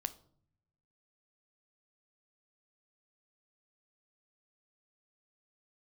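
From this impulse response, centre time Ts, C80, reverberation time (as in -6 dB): 4 ms, 21.5 dB, 0.60 s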